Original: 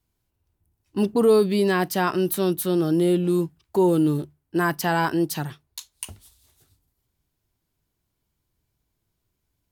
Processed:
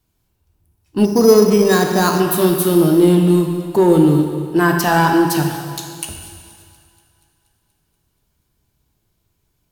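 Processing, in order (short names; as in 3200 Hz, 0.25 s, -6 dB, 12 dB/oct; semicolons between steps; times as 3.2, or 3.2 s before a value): notch 2000 Hz, Q 20; in parallel at -5 dB: hard clip -19 dBFS, distortion -11 dB; on the sum: thinning echo 0.239 s, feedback 64%, high-pass 360 Hz, level -22 dB; on a send at -2.5 dB: reverb RT60 2.1 s, pre-delay 6 ms; 1.05–2.2 on the sum: careless resampling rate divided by 8×, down filtered, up hold; gain +3 dB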